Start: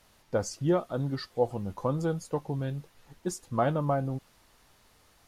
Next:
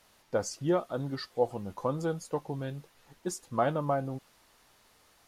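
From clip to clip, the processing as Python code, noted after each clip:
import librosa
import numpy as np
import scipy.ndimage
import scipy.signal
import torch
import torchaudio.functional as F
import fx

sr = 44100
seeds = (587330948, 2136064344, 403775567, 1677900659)

y = fx.low_shelf(x, sr, hz=170.0, db=-9.0)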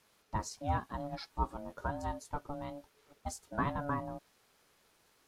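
y = x * np.sin(2.0 * np.pi * 430.0 * np.arange(len(x)) / sr)
y = F.gain(torch.from_numpy(y), -3.0).numpy()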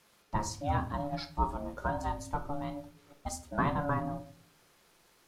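y = fx.room_shoebox(x, sr, seeds[0], volume_m3=490.0, walls='furnished', distance_m=0.87)
y = F.gain(torch.from_numpy(y), 3.5).numpy()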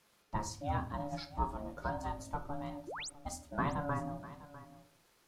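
y = fx.spec_paint(x, sr, seeds[1], shape='rise', start_s=2.87, length_s=0.23, low_hz=280.0, high_hz=9900.0, level_db=-38.0)
y = y + 10.0 ** (-16.5 / 20.0) * np.pad(y, (int(650 * sr / 1000.0), 0))[:len(y)]
y = F.gain(torch.from_numpy(y), -4.5).numpy()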